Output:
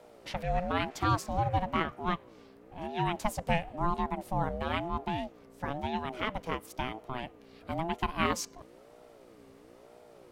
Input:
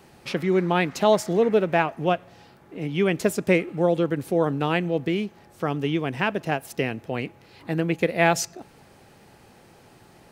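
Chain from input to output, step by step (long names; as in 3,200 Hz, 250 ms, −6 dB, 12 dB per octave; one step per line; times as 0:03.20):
mains hum 60 Hz, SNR 22 dB
ring modulator whose carrier an LFO sweeps 440 Hz, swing 25%, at 1 Hz
level −6 dB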